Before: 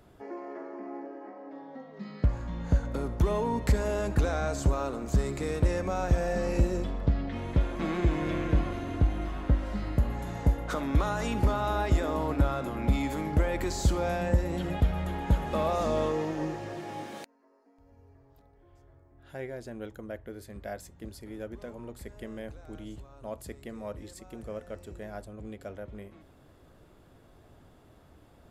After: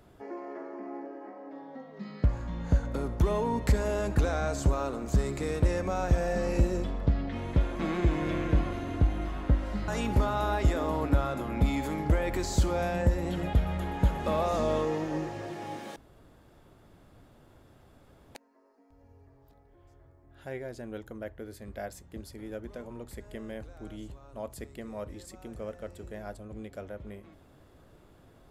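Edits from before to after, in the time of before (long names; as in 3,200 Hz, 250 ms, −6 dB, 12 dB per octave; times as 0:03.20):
0:09.88–0:11.15: remove
0:17.23: splice in room tone 2.39 s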